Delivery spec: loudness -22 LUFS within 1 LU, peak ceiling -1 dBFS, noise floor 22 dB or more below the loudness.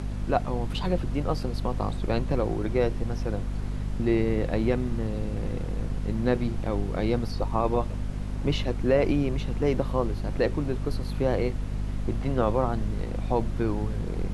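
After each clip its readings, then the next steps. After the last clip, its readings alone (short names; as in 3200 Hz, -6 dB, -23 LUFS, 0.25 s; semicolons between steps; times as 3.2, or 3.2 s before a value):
hum 50 Hz; harmonics up to 250 Hz; hum level -28 dBFS; noise floor -32 dBFS; noise floor target -50 dBFS; loudness -28.0 LUFS; peak -10.0 dBFS; loudness target -22.0 LUFS
-> notches 50/100/150/200/250 Hz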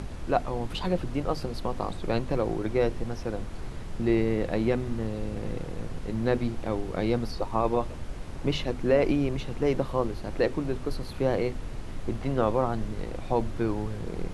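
hum none; noise floor -38 dBFS; noise floor target -52 dBFS
-> noise print and reduce 14 dB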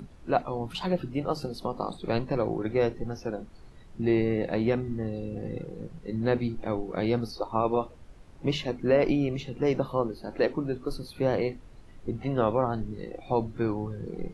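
noise floor -49 dBFS; noise floor target -52 dBFS
-> noise print and reduce 6 dB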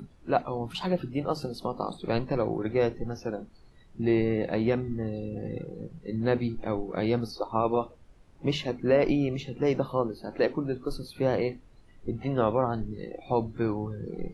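noise floor -55 dBFS; loudness -29.5 LUFS; peak -10.5 dBFS; loudness target -22.0 LUFS
-> gain +7.5 dB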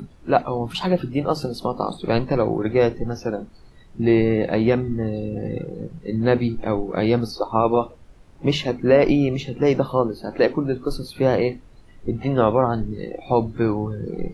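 loudness -22.0 LUFS; peak -3.0 dBFS; noise floor -47 dBFS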